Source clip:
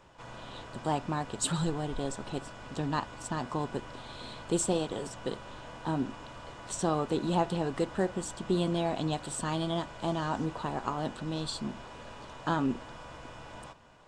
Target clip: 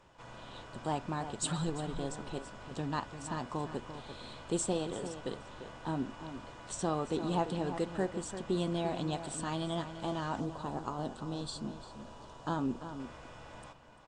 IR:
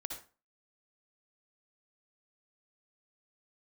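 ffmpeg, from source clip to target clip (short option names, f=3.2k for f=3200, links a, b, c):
-filter_complex "[0:a]asplit=2[a][b];[b]adelay=344,volume=-10dB,highshelf=f=4k:g=-7.74[c];[a][c]amix=inputs=2:normalize=0,aresample=22050,aresample=44100,asettb=1/sr,asplit=3[d][e][f];[d]atrim=end=10.404[g];[e]atrim=start=10.4:end=13,asetpts=PTS-STARTPTS,afade=t=in:d=0.004:c=qsin,afade=t=out:st=2.596:d=0.004:c=qsin,equalizer=f=2.1k:w=1.4:g=-9[h];[f]atrim=start=12.996[i];[g][h]acrossfade=d=0.004:c1=hsin:c2=qsin[j];[j][i]acrossfade=d=0.004:c1=qsin:c2=hsin,volume=-4dB"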